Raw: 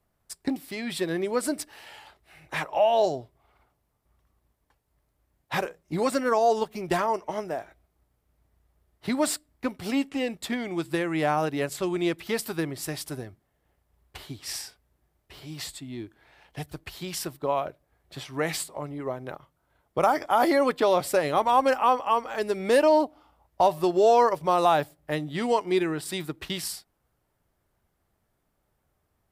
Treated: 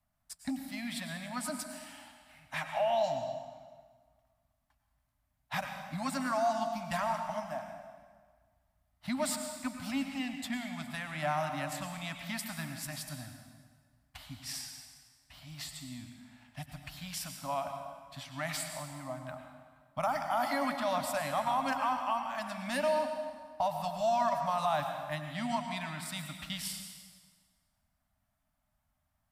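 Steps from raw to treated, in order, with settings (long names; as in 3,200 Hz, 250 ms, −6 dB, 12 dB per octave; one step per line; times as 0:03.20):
elliptic band-stop filter 270–610 Hz, stop band 40 dB
brickwall limiter −16.5 dBFS, peak gain reduction 6 dB
dense smooth reverb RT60 1.6 s, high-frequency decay 0.85×, pre-delay 85 ms, DRR 5 dB
level −6 dB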